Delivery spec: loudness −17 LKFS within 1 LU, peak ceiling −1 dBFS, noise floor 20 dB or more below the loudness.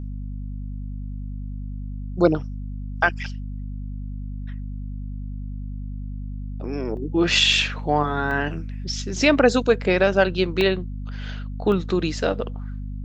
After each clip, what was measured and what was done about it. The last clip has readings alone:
number of dropouts 5; longest dropout 1.1 ms; mains hum 50 Hz; hum harmonics up to 250 Hz; level of the hum −28 dBFS; integrated loudness −22.0 LKFS; sample peak −3.0 dBFS; target loudness −17.0 LKFS
→ repair the gap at 0:06.97/0:07.53/0:08.31/0:10.61/0:11.72, 1.1 ms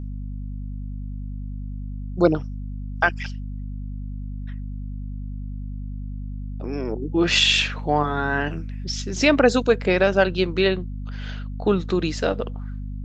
number of dropouts 0; mains hum 50 Hz; hum harmonics up to 250 Hz; level of the hum −28 dBFS
→ hum removal 50 Hz, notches 5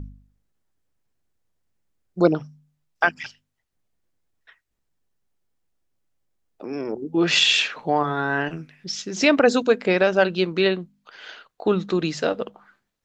mains hum none found; integrated loudness −21.5 LKFS; sample peak −3.5 dBFS; target loudness −17.0 LKFS
→ level +4.5 dB
brickwall limiter −1 dBFS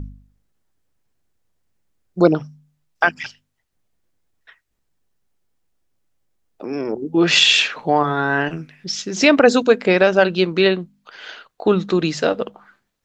integrated loudness −17.0 LKFS; sample peak −1.0 dBFS; background noise floor −72 dBFS

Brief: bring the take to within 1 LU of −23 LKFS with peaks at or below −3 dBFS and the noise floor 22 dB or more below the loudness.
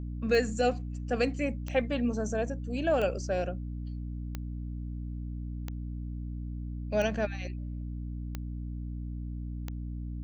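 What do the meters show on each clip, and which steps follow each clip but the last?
number of clicks 8; mains hum 60 Hz; hum harmonics up to 300 Hz; level of the hum −34 dBFS; integrated loudness −33.5 LKFS; sample peak −14.0 dBFS; target loudness −23.0 LKFS
→ click removal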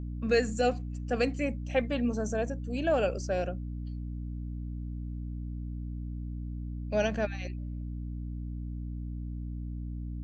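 number of clicks 0; mains hum 60 Hz; hum harmonics up to 300 Hz; level of the hum −34 dBFS
→ hum removal 60 Hz, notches 5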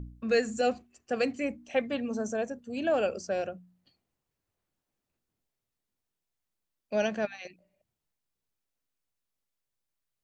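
mains hum none found; integrated loudness −31.0 LKFS; sample peak −15.0 dBFS; target loudness −23.0 LKFS
→ level +8 dB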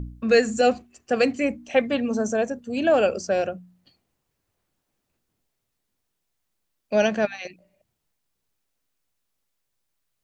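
integrated loudness −23.0 LKFS; sample peak −7.0 dBFS; background noise floor −78 dBFS

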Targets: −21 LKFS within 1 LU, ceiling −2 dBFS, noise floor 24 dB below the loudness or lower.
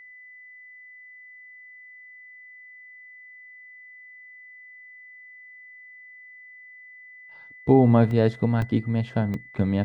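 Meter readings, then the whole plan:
number of dropouts 3; longest dropout 1.7 ms; interfering tone 2,000 Hz; level of the tone −44 dBFS; integrated loudness −22.0 LKFS; sample peak −5.0 dBFS; target loudness −21.0 LKFS
→ repair the gap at 0:08.11/0:08.62/0:09.34, 1.7 ms
notch filter 2,000 Hz, Q 30
level +1 dB

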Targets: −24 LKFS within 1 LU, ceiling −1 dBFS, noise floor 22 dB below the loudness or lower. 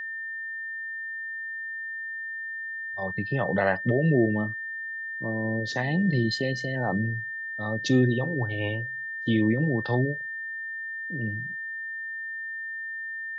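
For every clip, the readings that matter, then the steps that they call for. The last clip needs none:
interfering tone 1,800 Hz; level of the tone −32 dBFS; integrated loudness −28.5 LKFS; sample peak −9.0 dBFS; target loudness −24.0 LKFS
→ notch filter 1,800 Hz, Q 30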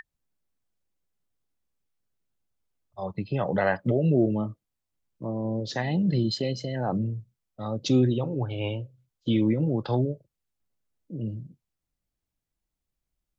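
interfering tone none found; integrated loudness −27.5 LKFS; sample peak −9.5 dBFS; target loudness −24.0 LKFS
→ level +3.5 dB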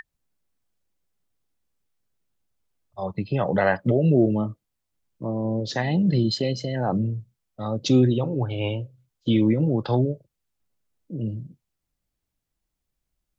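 integrated loudness −24.0 LKFS; sample peak −6.0 dBFS; background noise floor −81 dBFS

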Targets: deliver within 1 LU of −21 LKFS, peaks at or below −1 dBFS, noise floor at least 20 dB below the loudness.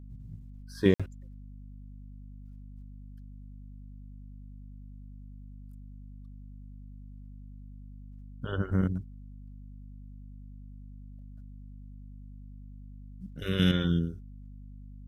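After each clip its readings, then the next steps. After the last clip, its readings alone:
number of dropouts 1; longest dropout 56 ms; mains hum 50 Hz; hum harmonics up to 250 Hz; level of the hum −43 dBFS; integrated loudness −29.5 LKFS; sample peak −8.5 dBFS; target loudness −21.0 LKFS
→ repair the gap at 0:00.94, 56 ms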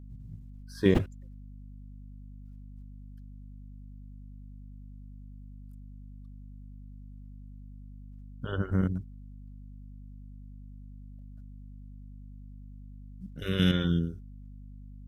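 number of dropouts 0; mains hum 50 Hz; hum harmonics up to 250 Hz; level of the hum −43 dBFS
→ mains-hum notches 50/100/150/200/250 Hz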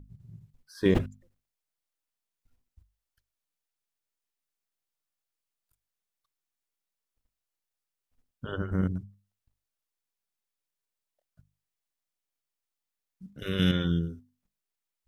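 mains hum none found; integrated loudness −29.5 LKFS; sample peak −10.0 dBFS; target loudness −21.0 LKFS
→ level +8.5 dB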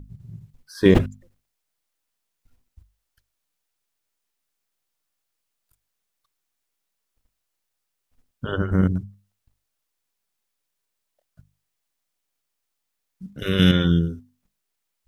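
integrated loudness −21.0 LKFS; sample peak −1.5 dBFS; background noise floor −79 dBFS

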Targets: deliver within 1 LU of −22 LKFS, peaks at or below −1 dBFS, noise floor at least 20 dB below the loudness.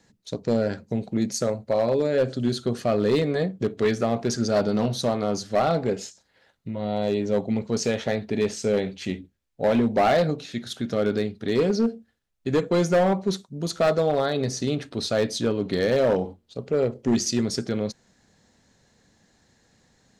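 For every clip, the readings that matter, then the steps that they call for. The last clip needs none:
share of clipped samples 1.5%; peaks flattened at −15.0 dBFS; integrated loudness −24.5 LKFS; sample peak −15.0 dBFS; target loudness −22.0 LKFS
→ clipped peaks rebuilt −15 dBFS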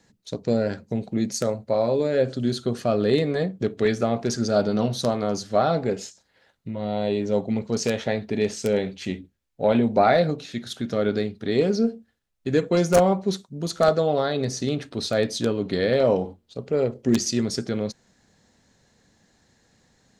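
share of clipped samples 0.0%; integrated loudness −24.0 LKFS; sample peak −6.0 dBFS; target loudness −22.0 LKFS
→ level +2 dB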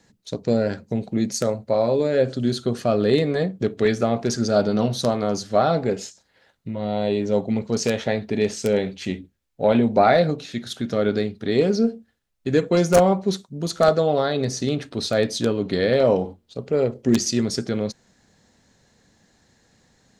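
integrated loudness −22.0 LKFS; sample peak −4.0 dBFS; background noise floor −66 dBFS

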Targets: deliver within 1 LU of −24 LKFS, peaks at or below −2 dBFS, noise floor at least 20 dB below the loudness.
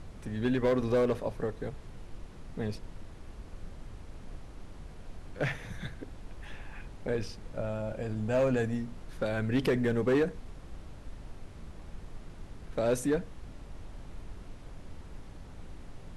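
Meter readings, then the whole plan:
share of clipped samples 0.5%; peaks flattened at −21.0 dBFS; background noise floor −48 dBFS; target noise floor −52 dBFS; integrated loudness −31.5 LKFS; sample peak −21.0 dBFS; target loudness −24.0 LKFS
→ clipped peaks rebuilt −21 dBFS
noise reduction from a noise print 6 dB
level +7.5 dB

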